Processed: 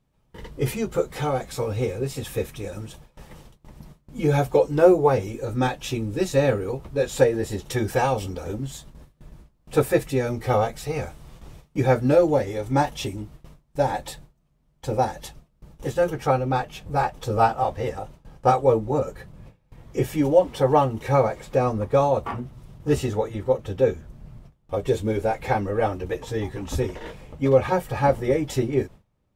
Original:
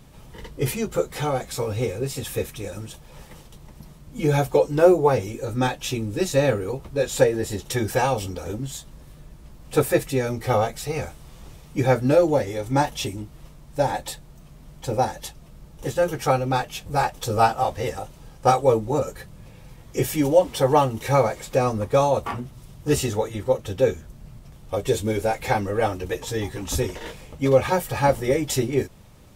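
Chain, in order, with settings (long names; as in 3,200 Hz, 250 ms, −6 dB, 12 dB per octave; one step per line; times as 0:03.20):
noise gate with hold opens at −34 dBFS
high-shelf EQ 3,200 Hz −5.5 dB, from 0:16.10 −11.5 dB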